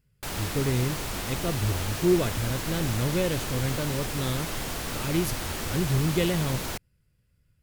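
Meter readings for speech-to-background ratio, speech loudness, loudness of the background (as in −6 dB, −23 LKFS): 3.0 dB, −29.0 LKFS, −32.0 LKFS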